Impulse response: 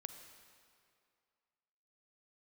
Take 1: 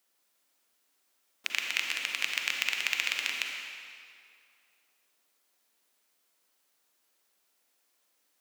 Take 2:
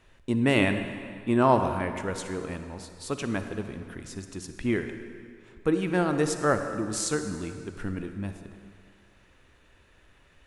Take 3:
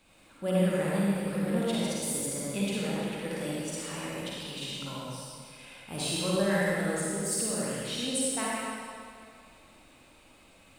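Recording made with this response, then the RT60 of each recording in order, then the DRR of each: 2; 2.4 s, 2.4 s, 2.4 s; 1.0 dB, 7.5 dB, -7.0 dB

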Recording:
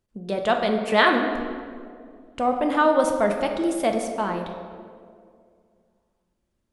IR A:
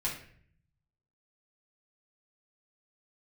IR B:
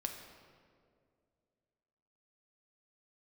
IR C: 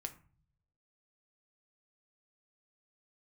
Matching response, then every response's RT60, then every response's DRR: B; 0.55 s, 2.2 s, 0.40 s; -6.5 dB, 3.0 dB, 5.5 dB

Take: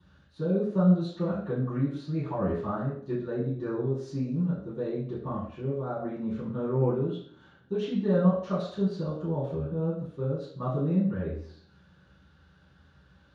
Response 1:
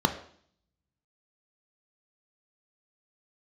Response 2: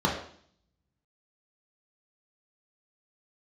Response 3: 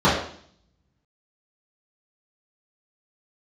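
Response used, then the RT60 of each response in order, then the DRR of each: 3; 0.55 s, 0.55 s, 0.55 s; 6.5 dB, -3.0 dB, -12.0 dB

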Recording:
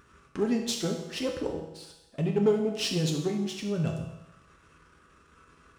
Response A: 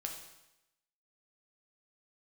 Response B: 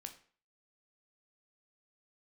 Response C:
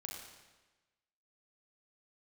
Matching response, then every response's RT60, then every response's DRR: A; 0.90 s, 0.45 s, 1.2 s; 1.5 dB, 5.5 dB, -1.0 dB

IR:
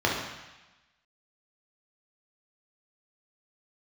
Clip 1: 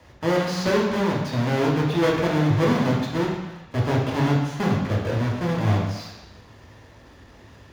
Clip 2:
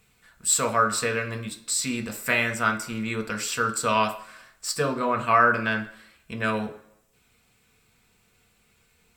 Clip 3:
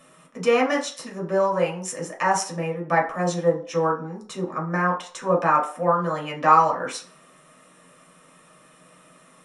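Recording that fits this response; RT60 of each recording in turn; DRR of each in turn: 1; 1.1 s, 0.70 s, 0.50 s; -3.0 dB, 4.5 dB, -2.5 dB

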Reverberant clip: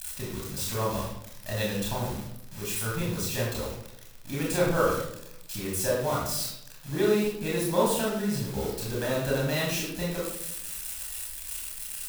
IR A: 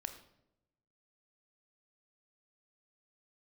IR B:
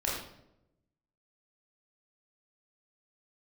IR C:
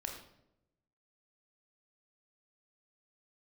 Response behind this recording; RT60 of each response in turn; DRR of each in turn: B; 0.85 s, 0.80 s, 0.85 s; 7.0 dB, -5.5 dB, 1.5 dB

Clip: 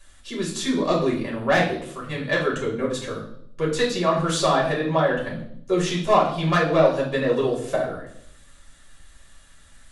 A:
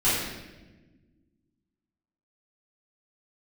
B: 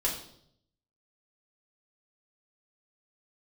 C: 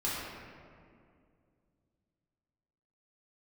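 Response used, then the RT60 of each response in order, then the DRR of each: B; 1.2 s, 0.70 s, 2.3 s; -13.0 dB, -5.0 dB, -8.5 dB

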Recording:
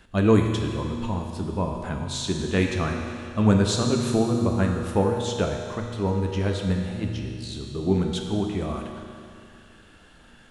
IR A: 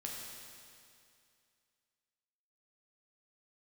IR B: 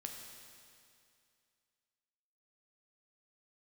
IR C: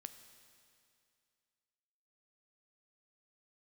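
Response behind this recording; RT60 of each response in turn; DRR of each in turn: B; 2.4 s, 2.4 s, 2.4 s; -2.5 dB, 1.5 dB, 9.0 dB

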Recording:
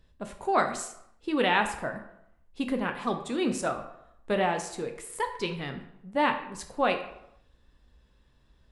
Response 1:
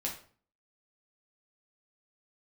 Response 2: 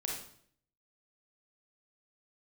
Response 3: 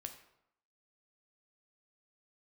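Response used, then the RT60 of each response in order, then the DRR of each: 3; 0.45 s, 0.60 s, 0.80 s; -2.0 dB, -2.0 dB, 5.5 dB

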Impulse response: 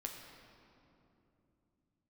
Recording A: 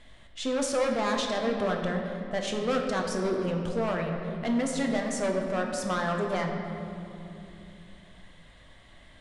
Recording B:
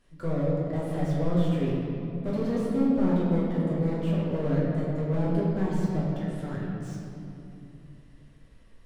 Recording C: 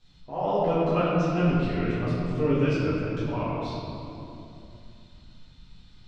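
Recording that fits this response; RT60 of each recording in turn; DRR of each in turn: A; 2.9 s, 2.9 s, 2.9 s; 1.5 dB, -7.0 dB, -13.0 dB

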